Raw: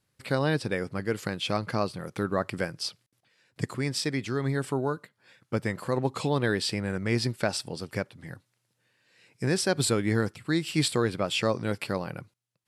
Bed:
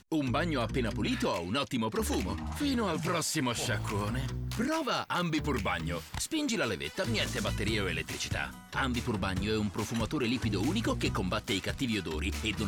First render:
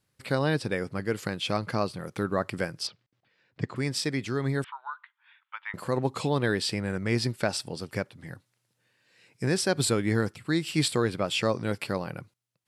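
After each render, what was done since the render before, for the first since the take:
0:02.87–0:03.76: high-frequency loss of the air 180 metres
0:04.64–0:05.74: Chebyshev band-pass filter 910–3,500 Hz, order 4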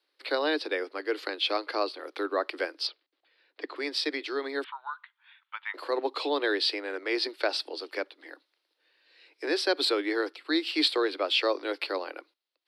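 Butterworth high-pass 290 Hz 96 dB per octave
high shelf with overshoot 5,500 Hz −9.5 dB, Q 3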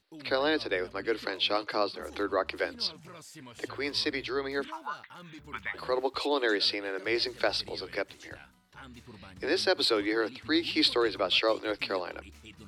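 mix in bed −17.5 dB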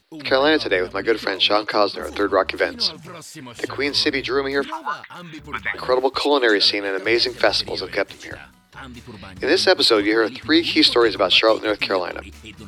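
level +11 dB
brickwall limiter −1 dBFS, peak gain reduction 1.5 dB

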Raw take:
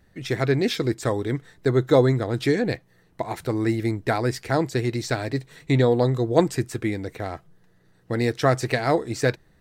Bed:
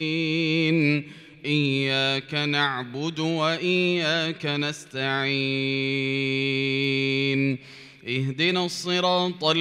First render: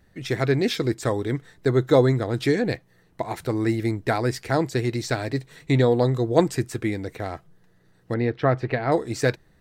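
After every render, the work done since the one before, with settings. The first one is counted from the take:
0:08.14–0:08.92: high-frequency loss of the air 370 metres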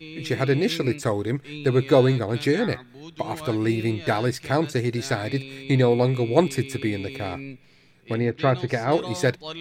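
mix in bed −13.5 dB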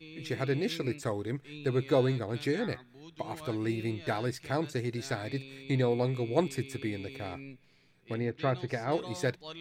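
level −9 dB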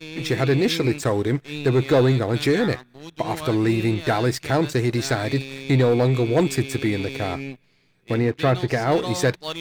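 leveller curve on the samples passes 2
in parallel at +1 dB: brickwall limiter −21.5 dBFS, peak gain reduction 10 dB

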